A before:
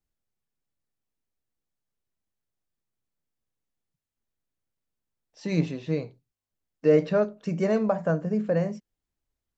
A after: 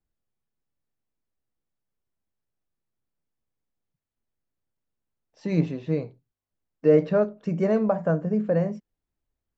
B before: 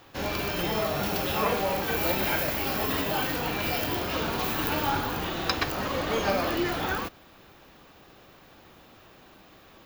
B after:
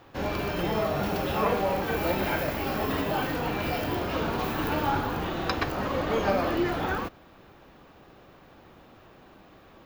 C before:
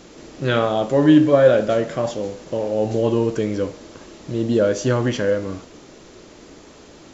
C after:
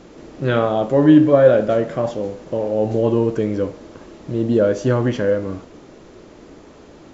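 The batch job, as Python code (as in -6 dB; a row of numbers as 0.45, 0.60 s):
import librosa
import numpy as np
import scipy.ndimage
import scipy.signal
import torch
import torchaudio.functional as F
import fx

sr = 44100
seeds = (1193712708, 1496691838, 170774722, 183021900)

y = fx.high_shelf(x, sr, hz=2600.0, db=-11.0)
y = F.gain(torch.from_numpy(y), 2.0).numpy()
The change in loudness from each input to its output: +1.5, -1.0, +1.5 LU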